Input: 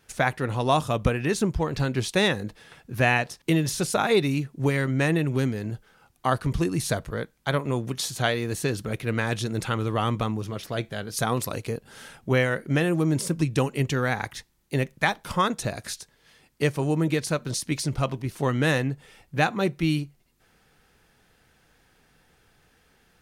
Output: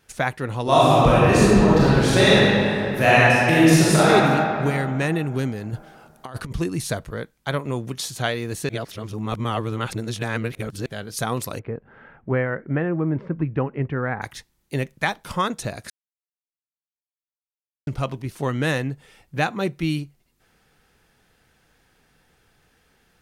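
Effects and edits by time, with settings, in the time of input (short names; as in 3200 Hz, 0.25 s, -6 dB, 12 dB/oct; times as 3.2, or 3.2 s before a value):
0.62–4.1 reverb throw, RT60 2.7 s, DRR -9 dB
5.73–6.52 negative-ratio compressor -29 dBFS, ratio -0.5
8.69–10.86 reverse
11.59–14.22 LPF 1900 Hz 24 dB/oct
15.9–17.87 mute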